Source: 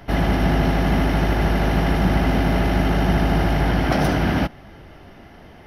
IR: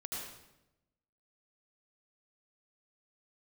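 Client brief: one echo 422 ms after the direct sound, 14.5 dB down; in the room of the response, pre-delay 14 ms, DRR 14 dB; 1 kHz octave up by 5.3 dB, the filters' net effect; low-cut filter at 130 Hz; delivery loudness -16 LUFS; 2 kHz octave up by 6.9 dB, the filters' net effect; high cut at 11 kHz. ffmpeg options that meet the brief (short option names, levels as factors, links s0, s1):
-filter_complex "[0:a]highpass=130,lowpass=11000,equalizer=f=1000:t=o:g=6,equalizer=f=2000:t=o:g=6.5,aecho=1:1:422:0.188,asplit=2[s0][s1];[1:a]atrim=start_sample=2205,adelay=14[s2];[s1][s2]afir=irnorm=-1:irlink=0,volume=0.188[s3];[s0][s3]amix=inputs=2:normalize=0,volume=1.33"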